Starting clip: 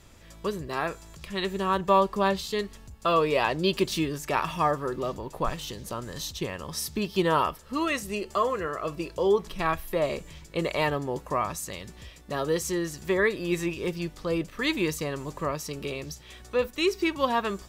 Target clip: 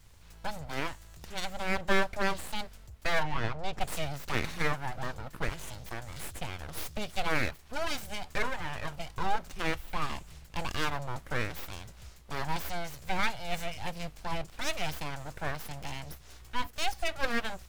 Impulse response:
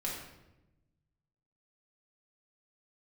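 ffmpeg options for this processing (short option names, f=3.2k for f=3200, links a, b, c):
-filter_complex "[0:a]acrossover=split=170[a][b];[b]aeval=exprs='abs(val(0))':c=same[c];[a][c]amix=inputs=2:normalize=0,asettb=1/sr,asplit=3[d][e][f];[d]atrim=end=3.234[g];[e]atrim=start=3.23:end=3.81,asetpts=PTS-STARTPTS,afade=t=in:d=0.004:c=qsin,afade=t=out:st=0.576:d=0.004:c=qsin,lowpass=f=1.3k:p=1[h];[f]atrim=start=3.806[i];[g][h]acrossfade=d=0.004:c1=hsin:c2=qsin[j];[j][i]acrossfade=d=0.004:c1=qsin:c2=hsin,volume=-2.5dB"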